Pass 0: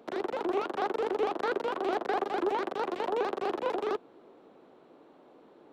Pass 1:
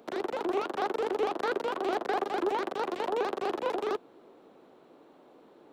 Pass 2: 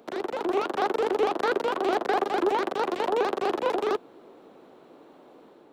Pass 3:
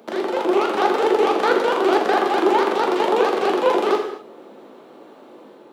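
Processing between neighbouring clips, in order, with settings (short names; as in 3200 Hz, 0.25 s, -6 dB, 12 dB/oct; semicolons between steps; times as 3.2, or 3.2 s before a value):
high shelf 5800 Hz +7 dB
AGC gain up to 3.5 dB; gain +1.5 dB
HPF 180 Hz 12 dB/oct; non-linear reverb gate 0.28 s falling, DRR 1 dB; gain +5.5 dB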